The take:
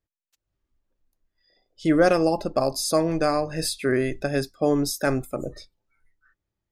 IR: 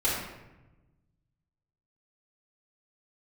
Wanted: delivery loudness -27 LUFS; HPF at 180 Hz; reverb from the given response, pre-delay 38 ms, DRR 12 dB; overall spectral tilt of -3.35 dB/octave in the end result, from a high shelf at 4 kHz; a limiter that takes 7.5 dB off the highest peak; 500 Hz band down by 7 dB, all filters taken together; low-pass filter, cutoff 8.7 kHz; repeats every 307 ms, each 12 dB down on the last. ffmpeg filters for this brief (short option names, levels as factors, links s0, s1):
-filter_complex "[0:a]highpass=180,lowpass=8700,equalizer=f=500:t=o:g=-9,highshelf=f=4000:g=8.5,alimiter=limit=0.15:level=0:latency=1,aecho=1:1:307|614|921:0.251|0.0628|0.0157,asplit=2[s0][s1];[1:a]atrim=start_sample=2205,adelay=38[s2];[s1][s2]afir=irnorm=-1:irlink=0,volume=0.0708[s3];[s0][s3]amix=inputs=2:normalize=0,volume=1.12"